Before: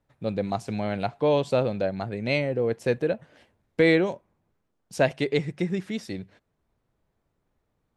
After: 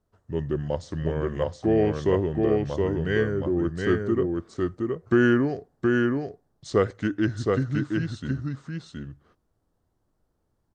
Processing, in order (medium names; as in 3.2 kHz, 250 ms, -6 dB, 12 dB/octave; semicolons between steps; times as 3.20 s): peaking EQ 3.4 kHz -10 dB 0.57 oct; speed mistake 45 rpm record played at 33 rpm; delay 720 ms -3 dB